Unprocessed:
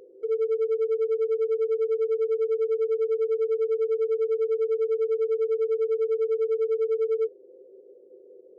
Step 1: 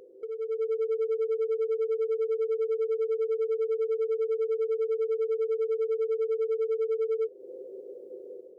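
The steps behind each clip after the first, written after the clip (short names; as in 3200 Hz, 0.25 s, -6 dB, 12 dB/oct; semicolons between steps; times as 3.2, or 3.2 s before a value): compressor 5:1, threshold -35 dBFS, peak gain reduction 11.5 dB; bell 380 Hz -2.5 dB; AGC gain up to 9.5 dB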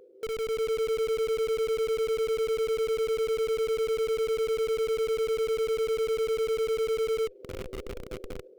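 median filter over 15 samples; in parallel at -5.5 dB: Schmitt trigger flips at -37.5 dBFS; on the sum: dynamic EQ 2600 Hz, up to +7 dB, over -54 dBFS, Q 1.8; gain -2.5 dB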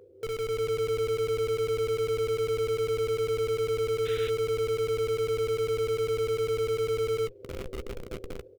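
octaver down 2 oct, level -5 dB; painted sound noise, 4.05–4.3, 1400–4100 Hz -43 dBFS; doubler 15 ms -14 dB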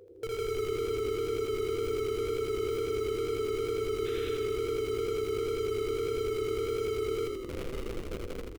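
limiter -29 dBFS, peak gain reduction 8 dB; wow and flutter 28 cents; frequency-shifting echo 81 ms, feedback 58%, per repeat -33 Hz, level -3 dB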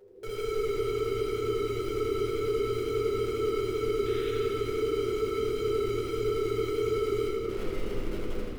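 reverb RT60 2.5 s, pre-delay 5 ms, DRR -7 dB; gain -5.5 dB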